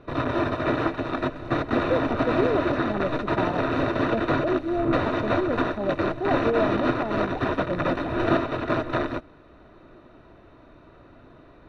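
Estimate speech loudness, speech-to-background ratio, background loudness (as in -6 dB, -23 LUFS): -29.5 LUFS, -3.5 dB, -26.0 LUFS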